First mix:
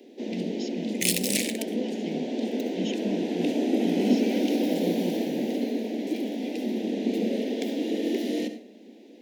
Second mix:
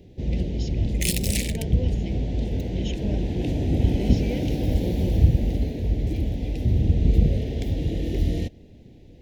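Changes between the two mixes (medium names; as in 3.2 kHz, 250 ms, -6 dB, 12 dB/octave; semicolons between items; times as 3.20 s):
first sound: remove steep high-pass 210 Hz 96 dB/octave; reverb: off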